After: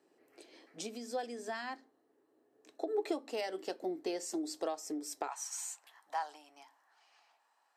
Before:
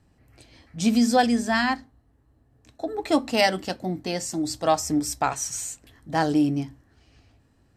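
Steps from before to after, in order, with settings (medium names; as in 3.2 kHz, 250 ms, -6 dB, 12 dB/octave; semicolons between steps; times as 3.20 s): compression 10:1, threshold -31 dBFS, peak gain reduction 17 dB; ladder high-pass 340 Hz, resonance 60%, from 5.27 s 790 Hz; trim +4.5 dB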